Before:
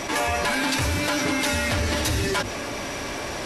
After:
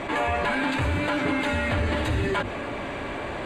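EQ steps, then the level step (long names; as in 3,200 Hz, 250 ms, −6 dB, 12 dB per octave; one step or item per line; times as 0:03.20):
moving average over 8 samples
0.0 dB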